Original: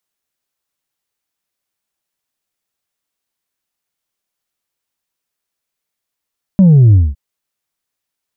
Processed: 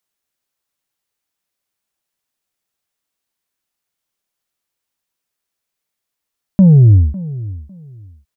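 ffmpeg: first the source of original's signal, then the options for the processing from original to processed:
-f lavfi -i "aevalsrc='0.631*clip((0.56-t)/0.21,0,1)*tanh(1.26*sin(2*PI*200*0.56/log(65/200)*(exp(log(65/200)*t/0.56)-1)))/tanh(1.26)':duration=0.56:sample_rate=44100"
-filter_complex "[0:a]asplit=2[link_01][link_02];[link_02]adelay=552,lowpass=frequency=870:poles=1,volume=-17dB,asplit=2[link_03][link_04];[link_04]adelay=552,lowpass=frequency=870:poles=1,volume=0.23[link_05];[link_01][link_03][link_05]amix=inputs=3:normalize=0"

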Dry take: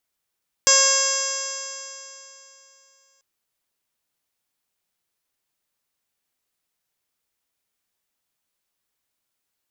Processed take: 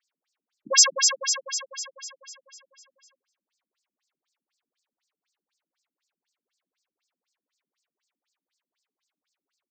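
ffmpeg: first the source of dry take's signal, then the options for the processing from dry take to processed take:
-f lavfi -i "aevalsrc='0.0708*pow(10,-3*t/3.06)*sin(2*PI*541.19*t)+0.0631*pow(10,-3*t/3.06)*sin(2*PI*1083.54*t)+0.0596*pow(10,-3*t/3.06)*sin(2*PI*1628.18*t)+0.0316*pow(10,-3*t/3.06)*sin(2*PI*2176.26*t)+0.0376*pow(10,-3*t/3.06)*sin(2*PI*2728.9*t)+0.0447*pow(10,-3*t/3.06)*sin(2*PI*3287.22*t)+0.0141*pow(10,-3*t/3.06)*sin(2*PI*3852.31*t)+0.0251*pow(10,-3*t/3.06)*sin(2*PI*4425.24*t)+0.106*pow(10,-3*t/3.06)*sin(2*PI*5007.05*t)+0.0891*pow(10,-3*t/3.06)*sin(2*PI*5598.76*t)+0.141*pow(10,-3*t/3.06)*sin(2*PI*6201.36*t)+0.075*pow(10,-3*t/3.06)*sin(2*PI*6815.8*t)+0.126*pow(10,-3*t/3.06)*sin(2*PI*7442.99*t)':duration=2.54:sample_rate=44100"
-af "aecho=1:1:191:0.0708,acontrast=82,afftfilt=real='re*between(b*sr/1024,220*pow(6200/220,0.5+0.5*sin(2*PI*4*pts/sr))/1.41,220*pow(6200/220,0.5+0.5*sin(2*PI*4*pts/sr))*1.41)':imag='im*between(b*sr/1024,220*pow(6200/220,0.5+0.5*sin(2*PI*4*pts/sr))/1.41,220*pow(6200/220,0.5+0.5*sin(2*PI*4*pts/sr))*1.41)':win_size=1024:overlap=0.75"

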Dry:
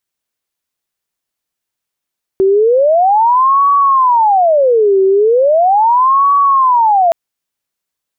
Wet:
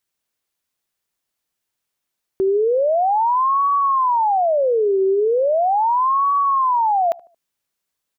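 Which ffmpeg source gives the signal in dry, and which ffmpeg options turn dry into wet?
-f lavfi -i "aevalsrc='0.473*sin(2*PI*(756.5*t-373.5/(2*PI*0.38)*sin(2*PI*0.38*t)))':duration=4.72:sample_rate=44100"
-filter_complex "[0:a]alimiter=limit=-14dB:level=0:latency=1:release=263,asplit=2[link_01][link_02];[link_02]adelay=75,lowpass=frequency=820:poles=1,volume=-21dB,asplit=2[link_03][link_04];[link_04]adelay=75,lowpass=frequency=820:poles=1,volume=0.48,asplit=2[link_05][link_06];[link_06]adelay=75,lowpass=frequency=820:poles=1,volume=0.48[link_07];[link_01][link_03][link_05][link_07]amix=inputs=4:normalize=0"

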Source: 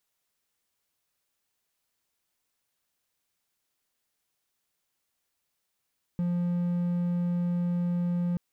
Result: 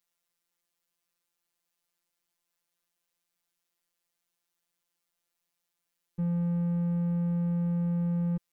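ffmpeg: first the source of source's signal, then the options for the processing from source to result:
-f lavfi -i "aevalsrc='0.0708*(1-4*abs(mod(175*t+0.25,1)-0.5))':duration=2.18:sample_rate=44100"
-af "afftfilt=real='hypot(re,im)*cos(PI*b)':imag='0':win_size=1024:overlap=0.75"

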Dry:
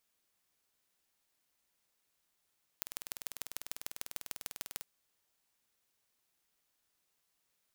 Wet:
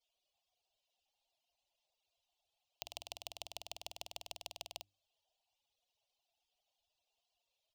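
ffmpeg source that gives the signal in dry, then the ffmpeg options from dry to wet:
-f lavfi -i "aevalsrc='0.355*eq(mod(n,2194),0)*(0.5+0.5*eq(mod(n,6582),0))':duration=2.01:sample_rate=44100"
-af "bandreject=frequency=50:width_type=h:width=6,bandreject=frequency=100:width_type=h:width=6,bandreject=frequency=150:width_type=h:width=6,bandreject=frequency=200:width_type=h:width=6,bandreject=frequency=250:width_type=h:width=6,bandreject=frequency=300:width_type=h:width=6,bandreject=frequency=350:width_type=h:width=6,afftfilt=real='re*gte(hypot(re,im),0.0000794)':imag='im*gte(hypot(re,im),0.0000794)':win_size=1024:overlap=0.75,firequalizer=gain_entry='entry(110,0);entry(160,-17);entry(230,-13);entry(380,-9);entry(690,9);entry(1500,-24);entry(2800,5);entry(9600,-14)':delay=0.05:min_phase=1"

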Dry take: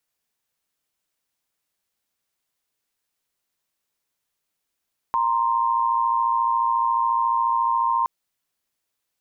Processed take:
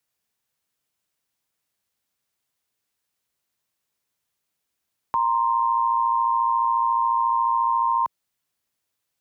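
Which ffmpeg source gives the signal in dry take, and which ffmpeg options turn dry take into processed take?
-f lavfi -i "aevalsrc='0.0891*(sin(2*PI*932.33*t)+sin(2*PI*1046.5*t))':duration=2.92:sample_rate=44100"
-filter_complex "[0:a]highpass=frequency=90:poles=1,acrossover=split=160|700[link_01][link_02][link_03];[link_01]acontrast=65[link_04];[link_04][link_02][link_03]amix=inputs=3:normalize=0"

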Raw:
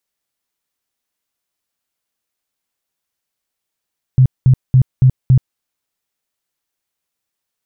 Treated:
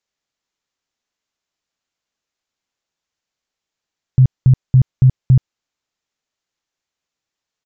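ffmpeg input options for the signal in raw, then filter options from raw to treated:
-f lavfi -i "aevalsrc='0.562*sin(2*PI*129*mod(t,0.28))*lt(mod(t,0.28),10/129)':duration=1.4:sample_rate=44100"
-af "aresample=16000,aresample=44100"

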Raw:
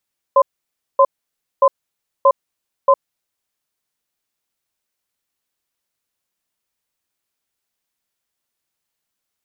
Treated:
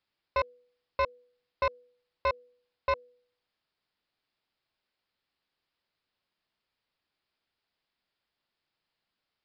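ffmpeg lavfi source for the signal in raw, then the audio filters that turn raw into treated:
-f lavfi -i "aevalsrc='0.316*(sin(2*PI*551*t)+sin(2*PI*1030*t))*clip(min(mod(t,0.63),0.06-mod(t,0.63))/0.005,0,1)':duration=3.14:sample_rate=44100"
-af "bandreject=frequency=245.8:width_type=h:width=4,bandreject=frequency=491.6:width_type=h:width=4,alimiter=limit=-10dB:level=0:latency=1:release=311,aresample=11025,asoftclip=type=tanh:threshold=-23dB,aresample=44100"

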